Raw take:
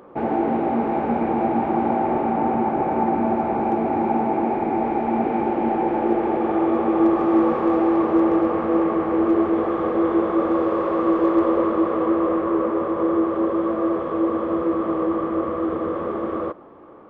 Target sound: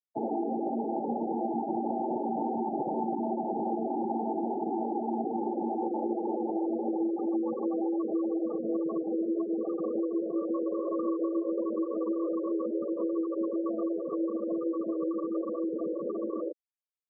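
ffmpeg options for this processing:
-filter_complex "[0:a]acrossover=split=140|280|730[a][b][c][d];[a]acompressor=threshold=-48dB:ratio=4[e];[b]acompressor=threshold=-33dB:ratio=4[f];[c]acompressor=threshold=-27dB:ratio=4[g];[d]acompressor=threshold=-40dB:ratio=4[h];[e][f][g][h]amix=inputs=4:normalize=0,afftfilt=real='re*gte(hypot(re,im),0.112)':imag='im*gte(hypot(re,im),0.112)':win_size=1024:overlap=0.75,lowpass=f=1.7k:t=q:w=6.7,volume=-5dB"

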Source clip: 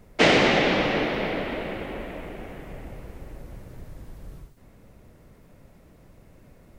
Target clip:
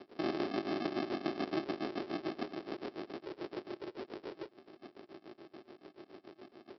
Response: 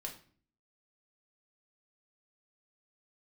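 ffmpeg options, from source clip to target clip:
-filter_complex "[0:a]alimiter=limit=-16dB:level=0:latency=1,acrossover=split=2000[a][b];[a]aeval=exprs='val(0)*(1-1/2+1/2*cos(2*PI*7*n/s))':c=same[c];[b]aeval=exprs='val(0)*(1-1/2-1/2*cos(2*PI*7*n/s))':c=same[d];[c][d]amix=inputs=2:normalize=0,aresample=11025,acrusher=samples=23:mix=1:aa=0.000001,aresample=44100,acompressor=threshold=-35dB:ratio=12,highpass=f=370:t=q:w=3.7,volume=4.5dB"

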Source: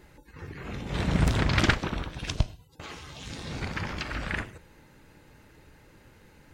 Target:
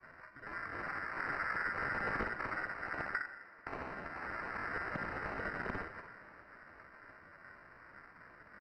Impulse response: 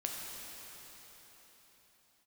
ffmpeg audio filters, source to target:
-filter_complex "[0:a]aecho=1:1:44|72:0.398|0.178,aeval=exprs='val(0)*sin(2*PI*1900*n/s)':c=same,agate=range=-33dB:threshold=-54dB:ratio=3:detection=peak,acrusher=samples=13:mix=1:aa=0.000001,atempo=0.76,asoftclip=type=tanh:threshold=-19.5dB,lowpass=2k,acompressor=threshold=-41dB:ratio=3,asplit=2[a][b];[b]highpass=240[c];[1:a]atrim=start_sample=2205,lowpass=5.3k[d];[c][d]afir=irnorm=-1:irlink=0,volume=-15dB[e];[a][e]amix=inputs=2:normalize=0,volume=2.5dB"

